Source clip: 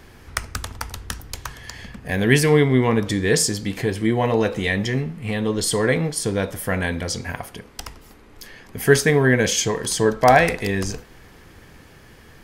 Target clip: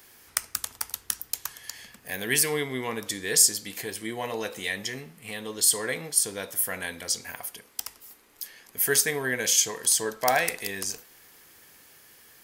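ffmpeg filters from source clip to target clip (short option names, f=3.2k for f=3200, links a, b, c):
-af "aemphasis=mode=production:type=riaa,volume=-9.5dB"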